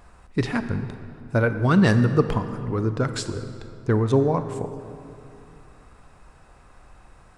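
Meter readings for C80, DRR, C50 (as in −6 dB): 10.5 dB, 9.0 dB, 10.0 dB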